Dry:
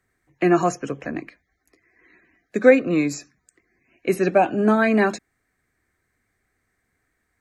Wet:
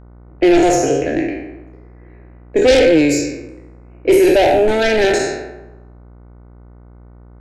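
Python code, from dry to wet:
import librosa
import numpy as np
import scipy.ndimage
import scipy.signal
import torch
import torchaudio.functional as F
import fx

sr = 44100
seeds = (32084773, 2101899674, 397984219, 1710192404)

p1 = fx.spec_trails(x, sr, decay_s=1.07)
p2 = fx.env_lowpass(p1, sr, base_hz=1200.0, full_db=-16.0)
p3 = fx.fold_sine(p2, sr, drive_db=14, ceiling_db=-1.0)
p4 = p2 + (p3 * 10.0 ** (-10.5 / 20.0))
p5 = fx.low_shelf(p4, sr, hz=350.0, db=6.0)
p6 = fx.fixed_phaser(p5, sr, hz=470.0, stages=4)
p7 = fx.dmg_buzz(p6, sr, base_hz=60.0, harmonics=25, level_db=-40.0, tilt_db=-7, odd_only=False)
y = p7 * 10.0 ** (-1.0 / 20.0)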